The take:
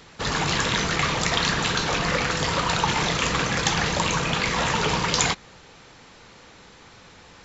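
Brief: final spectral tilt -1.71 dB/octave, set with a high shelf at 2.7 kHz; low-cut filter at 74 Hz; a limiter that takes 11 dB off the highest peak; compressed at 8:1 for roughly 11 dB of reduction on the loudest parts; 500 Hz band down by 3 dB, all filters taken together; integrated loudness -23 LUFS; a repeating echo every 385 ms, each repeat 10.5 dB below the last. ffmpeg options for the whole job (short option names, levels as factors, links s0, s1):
-af "highpass=74,equalizer=f=500:t=o:g=-4,highshelf=f=2700:g=8.5,acompressor=threshold=0.0562:ratio=8,alimiter=limit=0.119:level=0:latency=1,aecho=1:1:385|770|1155:0.299|0.0896|0.0269,volume=1.78"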